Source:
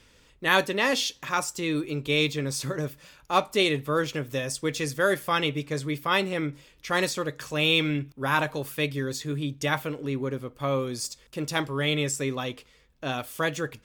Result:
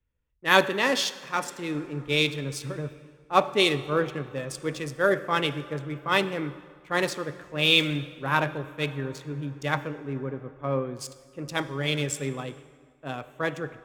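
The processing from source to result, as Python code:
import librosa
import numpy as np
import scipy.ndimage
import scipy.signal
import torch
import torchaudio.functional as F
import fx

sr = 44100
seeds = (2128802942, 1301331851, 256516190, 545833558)

y = fx.wiener(x, sr, points=9)
y = fx.rev_plate(y, sr, seeds[0], rt60_s=4.7, hf_ratio=0.65, predelay_ms=0, drr_db=11.0)
y = fx.band_widen(y, sr, depth_pct=70)
y = y * 10.0 ** (-1.0 / 20.0)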